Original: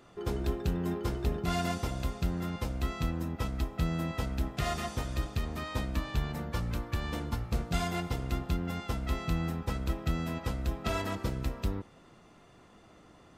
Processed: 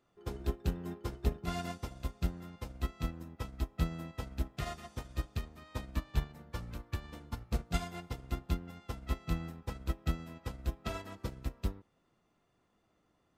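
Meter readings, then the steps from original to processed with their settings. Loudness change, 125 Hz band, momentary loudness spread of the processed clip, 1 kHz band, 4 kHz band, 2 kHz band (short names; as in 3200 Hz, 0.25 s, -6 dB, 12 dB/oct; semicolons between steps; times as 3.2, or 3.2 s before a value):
-6.0 dB, -5.5 dB, 8 LU, -7.5 dB, -7.0 dB, -7.5 dB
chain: upward expander 2.5:1, over -37 dBFS; gain +1 dB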